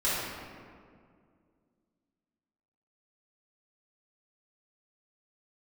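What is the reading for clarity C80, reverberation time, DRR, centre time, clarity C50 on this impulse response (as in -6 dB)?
0.0 dB, 2.1 s, -10.5 dB, 0.124 s, -3.0 dB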